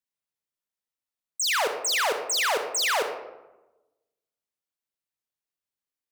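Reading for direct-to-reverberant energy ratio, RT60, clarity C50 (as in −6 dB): 5.5 dB, 1.0 s, 7.0 dB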